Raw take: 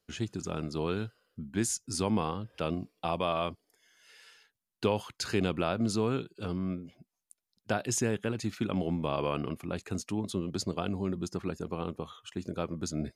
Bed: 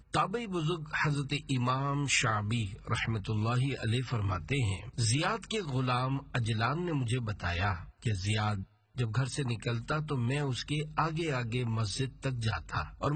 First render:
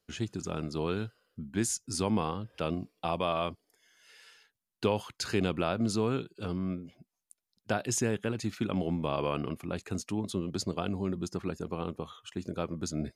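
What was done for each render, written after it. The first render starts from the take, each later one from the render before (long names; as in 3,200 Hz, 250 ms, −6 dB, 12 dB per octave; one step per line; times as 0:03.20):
no processing that can be heard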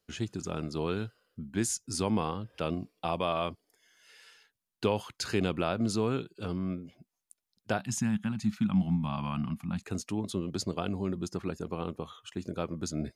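0:07.78–0:09.83: drawn EQ curve 120 Hz 0 dB, 210 Hz +9 dB, 430 Hz −27 dB, 800 Hz −1 dB, 2,100 Hz −4 dB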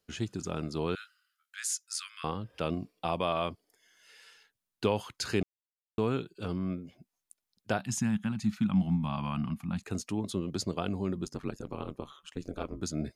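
0:00.95–0:02.24: Butterworth high-pass 1,200 Hz 96 dB per octave
0:05.43–0:05.98: silence
0:11.24–0:12.80: ring modulation 42 Hz → 110 Hz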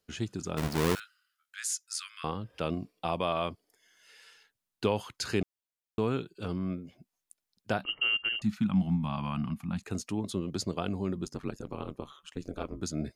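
0:00.57–0:01.00: each half-wave held at its own peak
0:07.84–0:08.42: voice inversion scrambler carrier 3,000 Hz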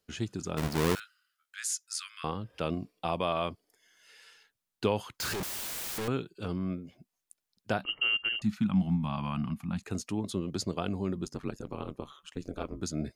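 0:05.20–0:06.08: sign of each sample alone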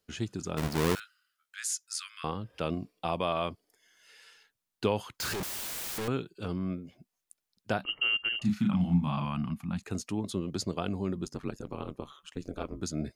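0:08.38–0:09.25: double-tracking delay 34 ms −2.5 dB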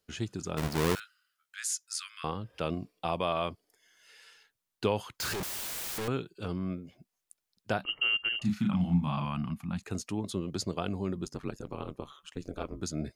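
parametric band 240 Hz −2 dB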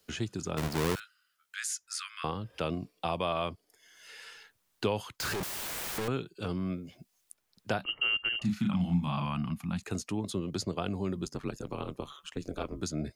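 multiband upward and downward compressor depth 40%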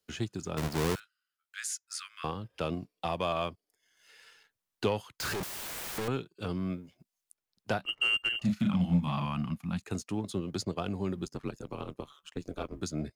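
leveller curve on the samples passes 1
expander for the loud parts 1.5 to 1, over −44 dBFS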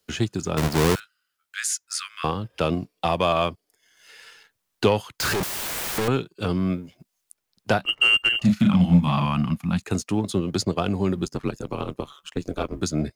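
level +10 dB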